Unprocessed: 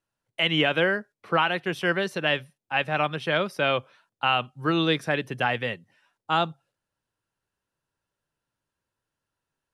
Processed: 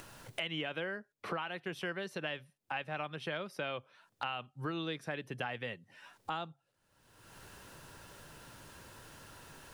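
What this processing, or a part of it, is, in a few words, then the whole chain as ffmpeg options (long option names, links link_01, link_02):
upward and downward compression: -af "acompressor=mode=upward:threshold=-31dB:ratio=2.5,acompressor=threshold=-40dB:ratio=4,volume=1.5dB"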